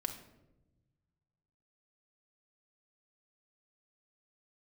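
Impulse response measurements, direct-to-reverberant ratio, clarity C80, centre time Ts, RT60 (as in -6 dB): 3.5 dB, 12.0 dB, 15 ms, 1.0 s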